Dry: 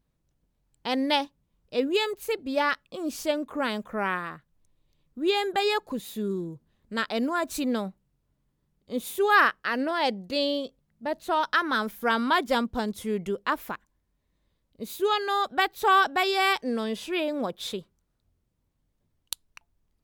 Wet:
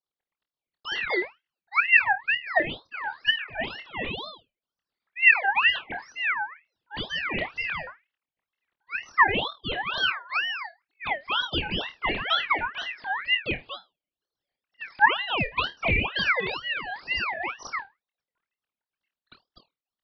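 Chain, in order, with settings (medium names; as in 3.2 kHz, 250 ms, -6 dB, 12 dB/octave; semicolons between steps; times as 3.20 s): formants replaced by sine waves; low-pass that closes with the level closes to 1 kHz, closed at -20.5 dBFS; dynamic bell 990 Hz, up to +4 dB, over -39 dBFS, Q 0.83; in parallel at -1.5 dB: compression, threshold -37 dBFS, peak gain reduction 24.5 dB; on the sum: flutter echo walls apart 4.4 m, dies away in 0.22 s; ring modulator with a swept carrier 1.8 kHz, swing 35%, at 2.1 Hz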